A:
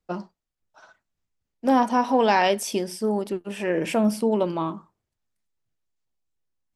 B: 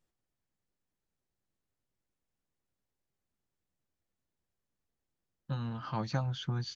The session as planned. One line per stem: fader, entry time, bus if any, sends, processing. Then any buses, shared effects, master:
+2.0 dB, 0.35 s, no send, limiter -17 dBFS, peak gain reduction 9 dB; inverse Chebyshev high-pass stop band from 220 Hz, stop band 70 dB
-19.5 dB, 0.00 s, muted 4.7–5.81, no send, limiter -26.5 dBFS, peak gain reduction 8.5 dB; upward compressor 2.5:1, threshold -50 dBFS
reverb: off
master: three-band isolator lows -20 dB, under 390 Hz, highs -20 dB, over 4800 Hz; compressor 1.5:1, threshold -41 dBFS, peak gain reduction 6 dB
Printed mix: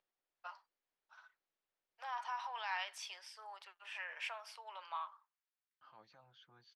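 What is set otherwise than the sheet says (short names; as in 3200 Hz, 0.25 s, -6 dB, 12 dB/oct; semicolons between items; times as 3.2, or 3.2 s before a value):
stem A +2.0 dB -> -8.0 dB; master: missing compressor 1.5:1, threshold -41 dBFS, peak gain reduction 6 dB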